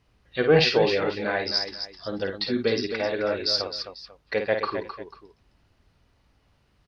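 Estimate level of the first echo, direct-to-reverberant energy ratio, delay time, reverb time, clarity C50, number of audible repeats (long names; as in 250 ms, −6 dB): −6.5 dB, no reverb audible, 52 ms, no reverb audible, no reverb audible, 3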